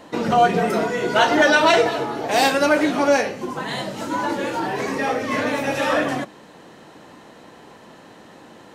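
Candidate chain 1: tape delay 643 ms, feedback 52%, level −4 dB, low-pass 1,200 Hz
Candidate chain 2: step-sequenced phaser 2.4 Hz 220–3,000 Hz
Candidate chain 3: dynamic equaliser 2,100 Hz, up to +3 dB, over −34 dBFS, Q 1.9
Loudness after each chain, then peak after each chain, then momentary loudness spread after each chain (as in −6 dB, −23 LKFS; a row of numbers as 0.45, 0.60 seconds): −19.0, −23.5, −19.0 LKFS; −2.0, −6.5, −2.0 dBFS; 17, 12, 12 LU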